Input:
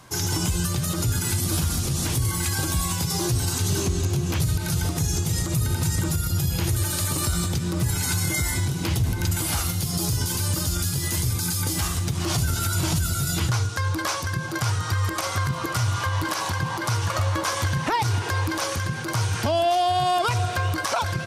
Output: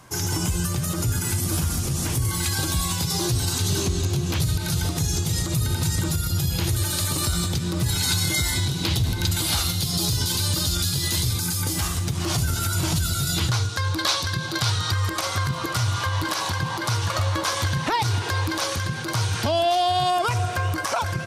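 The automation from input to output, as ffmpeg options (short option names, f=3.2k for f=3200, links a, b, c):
-af "asetnsamples=n=441:p=0,asendcmd='2.31 equalizer g 5.5;7.86 equalizer g 11.5;11.39 equalizer g 1.5;12.96 equalizer g 7.5;13.99 equalizer g 14;14.91 equalizer g 5.5;20.1 equalizer g -3',equalizer=f=3.9k:t=o:w=0.63:g=-3.5"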